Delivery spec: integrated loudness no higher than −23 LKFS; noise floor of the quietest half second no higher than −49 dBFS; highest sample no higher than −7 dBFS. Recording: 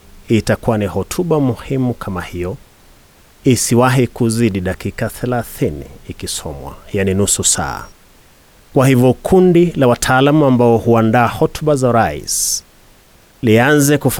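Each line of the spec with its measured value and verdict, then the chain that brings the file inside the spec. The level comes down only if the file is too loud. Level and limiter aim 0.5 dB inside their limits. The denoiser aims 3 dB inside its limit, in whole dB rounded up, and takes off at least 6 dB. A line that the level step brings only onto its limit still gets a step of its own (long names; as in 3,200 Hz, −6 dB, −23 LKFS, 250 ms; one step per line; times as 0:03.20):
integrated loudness −14.5 LKFS: out of spec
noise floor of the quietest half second −47 dBFS: out of spec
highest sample −2.0 dBFS: out of spec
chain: level −9 dB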